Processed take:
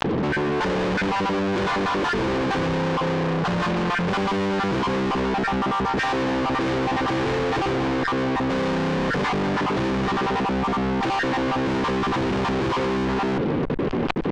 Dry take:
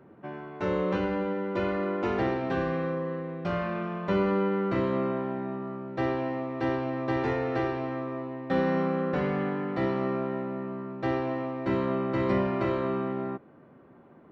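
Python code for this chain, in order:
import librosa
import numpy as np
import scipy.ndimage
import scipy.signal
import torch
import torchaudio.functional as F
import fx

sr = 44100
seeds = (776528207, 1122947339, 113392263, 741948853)

y = fx.spec_dropout(x, sr, seeds[0], share_pct=21)
y = scipy.signal.sosfilt(scipy.signal.butter(2, 44.0, 'highpass', fs=sr, output='sos'), y)
y = fx.low_shelf(y, sr, hz=500.0, db=9.0)
y = np.clip(10.0 ** (33.0 / 20.0) * y, -1.0, 1.0) / 10.0 ** (33.0 / 20.0)
y = fx.notch_comb(y, sr, f0_hz=670.0)
y = fx.small_body(y, sr, hz=(460.0, 3500.0), ring_ms=45, db=7)
y = fx.fuzz(y, sr, gain_db=50.0, gate_db=-58.0)
y = fx.air_absorb(y, sr, metres=130.0)
y = fx.env_flatten(y, sr, amount_pct=100)
y = y * librosa.db_to_amplitude(-9.0)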